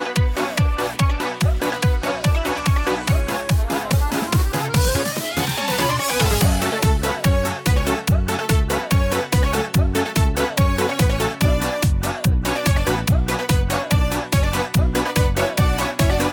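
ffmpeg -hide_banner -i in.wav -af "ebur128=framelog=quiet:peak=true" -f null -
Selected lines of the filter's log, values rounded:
Integrated loudness:
  I:         -19.7 LUFS
  Threshold: -29.7 LUFS
Loudness range:
  LRA:         1.2 LU
  Threshold: -39.7 LUFS
  LRA low:   -20.4 LUFS
  LRA high:  -19.2 LUFS
True peak:
  Peak:       -6.1 dBFS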